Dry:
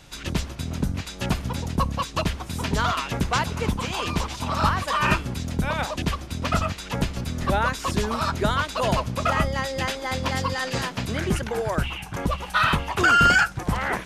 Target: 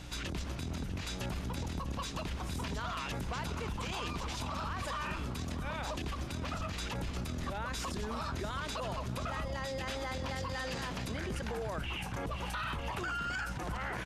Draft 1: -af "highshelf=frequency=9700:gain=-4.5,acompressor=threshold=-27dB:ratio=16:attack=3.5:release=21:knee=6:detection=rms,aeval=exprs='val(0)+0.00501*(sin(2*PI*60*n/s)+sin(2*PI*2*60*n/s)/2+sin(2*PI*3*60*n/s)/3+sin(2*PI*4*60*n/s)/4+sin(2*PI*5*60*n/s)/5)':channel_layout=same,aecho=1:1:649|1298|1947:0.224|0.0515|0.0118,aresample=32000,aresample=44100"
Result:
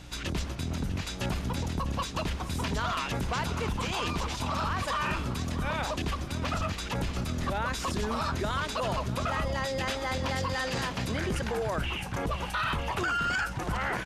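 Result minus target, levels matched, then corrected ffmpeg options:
downward compressor: peak gain reduction −8 dB
-af "highshelf=frequency=9700:gain=-4.5,acompressor=threshold=-35.5dB:ratio=16:attack=3.5:release=21:knee=6:detection=rms,aeval=exprs='val(0)+0.00501*(sin(2*PI*60*n/s)+sin(2*PI*2*60*n/s)/2+sin(2*PI*3*60*n/s)/3+sin(2*PI*4*60*n/s)/4+sin(2*PI*5*60*n/s)/5)':channel_layout=same,aecho=1:1:649|1298|1947:0.224|0.0515|0.0118,aresample=32000,aresample=44100"

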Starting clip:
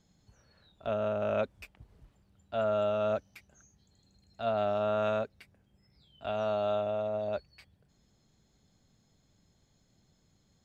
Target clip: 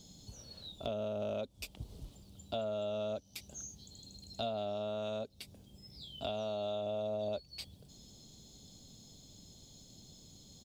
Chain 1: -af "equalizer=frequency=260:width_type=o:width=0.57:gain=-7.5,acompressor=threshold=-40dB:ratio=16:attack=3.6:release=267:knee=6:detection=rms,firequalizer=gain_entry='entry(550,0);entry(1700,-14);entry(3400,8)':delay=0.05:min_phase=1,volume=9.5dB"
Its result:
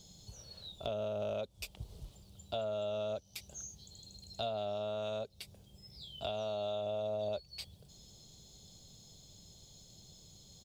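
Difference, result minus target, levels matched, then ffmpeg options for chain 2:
250 Hz band −4.5 dB
-af "equalizer=frequency=260:width_type=o:width=0.57:gain=3,acompressor=threshold=-40dB:ratio=16:attack=3.6:release=267:knee=6:detection=rms,firequalizer=gain_entry='entry(550,0);entry(1700,-14);entry(3400,8)':delay=0.05:min_phase=1,volume=9.5dB"

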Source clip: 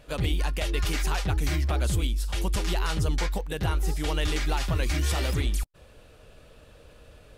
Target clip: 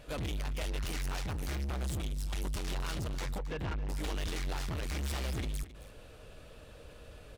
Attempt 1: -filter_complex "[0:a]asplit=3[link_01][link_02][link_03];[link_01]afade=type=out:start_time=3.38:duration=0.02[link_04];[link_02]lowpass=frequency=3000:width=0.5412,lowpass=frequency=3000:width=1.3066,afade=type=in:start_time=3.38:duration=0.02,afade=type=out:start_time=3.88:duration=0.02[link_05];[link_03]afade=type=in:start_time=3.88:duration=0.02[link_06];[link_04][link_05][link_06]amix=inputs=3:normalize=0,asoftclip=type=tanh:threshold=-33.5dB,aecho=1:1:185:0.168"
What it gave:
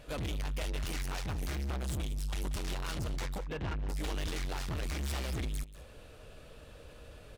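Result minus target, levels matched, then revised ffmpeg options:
echo 82 ms early
-filter_complex "[0:a]asplit=3[link_01][link_02][link_03];[link_01]afade=type=out:start_time=3.38:duration=0.02[link_04];[link_02]lowpass=frequency=3000:width=0.5412,lowpass=frequency=3000:width=1.3066,afade=type=in:start_time=3.38:duration=0.02,afade=type=out:start_time=3.88:duration=0.02[link_05];[link_03]afade=type=in:start_time=3.88:duration=0.02[link_06];[link_04][link_05][link_06]amix=inputs=3:normalize=0,asoftclip=type=tanh:threshold=-33.5dB,aecho=1:1:267:0.168"

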